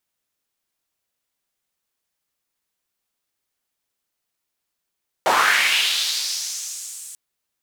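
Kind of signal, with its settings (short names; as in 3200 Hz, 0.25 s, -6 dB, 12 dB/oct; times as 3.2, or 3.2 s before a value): swept filtered noise white, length 1.89 s bandpass, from 640 Hz, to 8500 Hz, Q 2.7, linear, gain ramp -30.5 dB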